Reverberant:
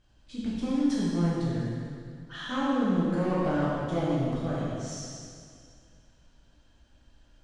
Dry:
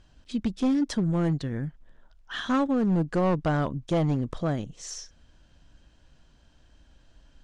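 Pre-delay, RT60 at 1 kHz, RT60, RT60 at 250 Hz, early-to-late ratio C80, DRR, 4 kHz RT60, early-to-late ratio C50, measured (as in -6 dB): 4 ms, 2.2 s, 2.2 s, 2.3 s, -1.0 dB, -8.5 dB, 2.1 s, -3.0 dB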